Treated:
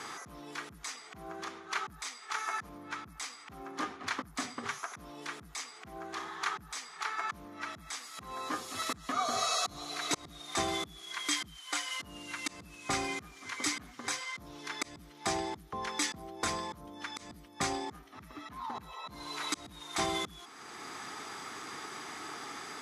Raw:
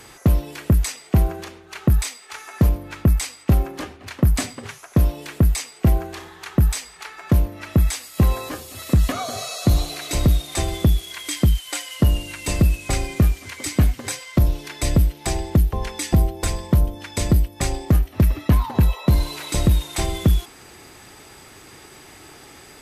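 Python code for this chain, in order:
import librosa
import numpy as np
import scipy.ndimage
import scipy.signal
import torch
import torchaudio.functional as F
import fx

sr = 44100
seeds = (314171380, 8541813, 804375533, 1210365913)

y = fx.auto_swell(x, sr, attack_ms=684.0)
y = fx.cabinet(y, sr, low_hz=250.0, low_slope=12, high_hz=9500.0, hz=(360.0, 560.0, 1200.0, 2700.0, 4500.0, 8300.0), db=(-5, -9, 7, -6, -3, -9))
y = y * 10.0 ** (3.0 / 20.0)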